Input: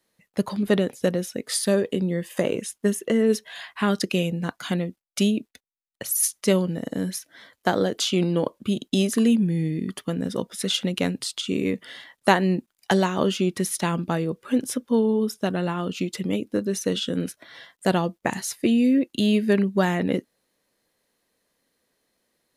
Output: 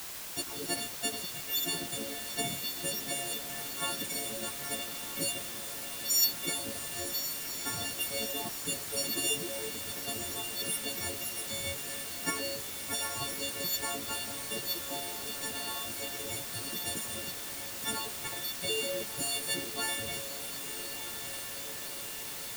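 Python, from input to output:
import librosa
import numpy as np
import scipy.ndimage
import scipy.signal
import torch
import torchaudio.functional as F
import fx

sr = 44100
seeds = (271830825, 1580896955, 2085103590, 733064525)

p1 = fx.freq_snap(x, sr, grid_st=4)
p2 = fx.band_shelf(p1, sr, hz=1400.0, db=-15.5, octaves=1.7)
p3 = fx.spec_gate(p2, sr, threshold_db=-15, keep='weak')
p4 = fx.dmg_noise_colour(p3, sr, seeds[0], colour='white', level_db=-42.0)
y = p4 + fx.echo_diffused(p4, sr, ms=1197, feedback_pct=69, wet_db=-9.5, dry=0)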